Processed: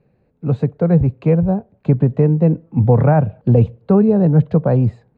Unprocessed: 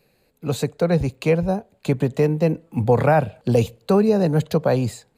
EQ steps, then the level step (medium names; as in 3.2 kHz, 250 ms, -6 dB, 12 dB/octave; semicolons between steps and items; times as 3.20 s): low-pass 1.5 kHz 12 dB/octave; peaking EQ 120 Hz +10 dB 2.4 oct; -1.0 dB